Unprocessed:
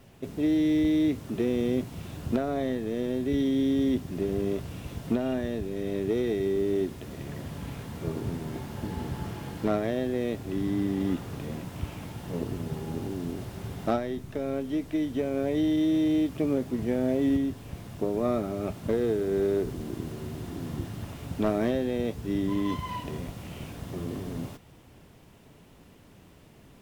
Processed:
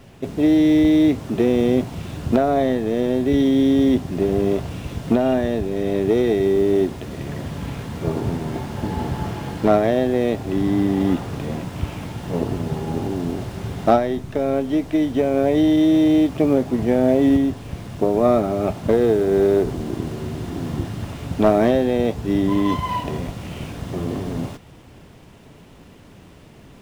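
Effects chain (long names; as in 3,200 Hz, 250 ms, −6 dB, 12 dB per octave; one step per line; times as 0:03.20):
running median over 3 samples
dynamic equaliser 750 Hz, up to +6 dB, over −46 dBFS, Q 1.7
level +8.5 dB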